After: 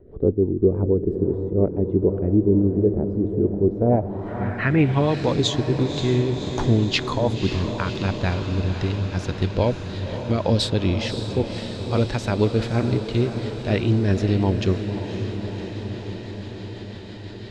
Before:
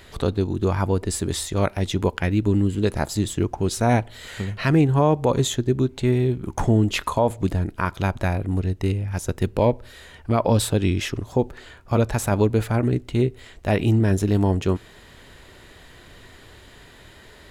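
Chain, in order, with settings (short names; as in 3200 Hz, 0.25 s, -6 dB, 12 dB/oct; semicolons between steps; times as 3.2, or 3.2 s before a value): rotary speaker horn 6 Hz; diffused feedback echo 0.552 s, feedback 74%, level -9 dB; low-pass sweep 410 Hz -> 4600 Hz, 3.73–5.21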